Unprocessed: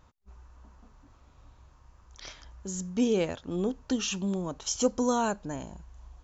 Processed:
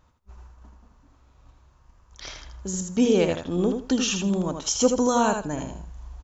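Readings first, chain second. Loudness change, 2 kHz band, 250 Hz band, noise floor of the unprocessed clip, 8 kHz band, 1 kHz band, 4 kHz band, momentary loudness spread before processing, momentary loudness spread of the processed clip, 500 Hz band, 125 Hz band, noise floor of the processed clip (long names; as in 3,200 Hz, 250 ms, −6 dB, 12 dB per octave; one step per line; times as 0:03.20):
+6.5 dB, +6.5 dB, +6.0 dB, −59 dBFS, can't be measured, +6.5 dB, +6.5 dB, 19 LU, 19 LU, +6.5 dB, +6.5 dB, −60 dBFS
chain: noise gate −51 dBFS, range −7 dB
repeating echo 80 ms, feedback 19%, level −6 dB
level +5.5 dB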